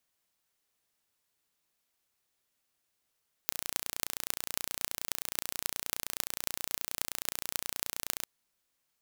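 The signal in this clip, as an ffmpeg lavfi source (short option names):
-f lavfi -i "aevalsrc='0.841*eq(mod(n,1495),0)*(0.5+0.5*eq(mod(n,11960),0))':d=4.77:s=44100"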